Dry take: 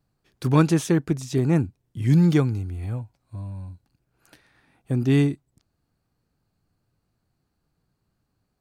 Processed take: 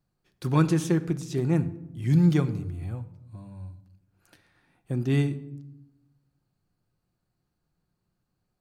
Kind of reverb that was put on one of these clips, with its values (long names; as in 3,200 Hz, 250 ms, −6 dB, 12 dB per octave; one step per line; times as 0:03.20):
rectangular room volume 2,900 cubic metres, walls furnished, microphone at 0.93 metres
level −5 dB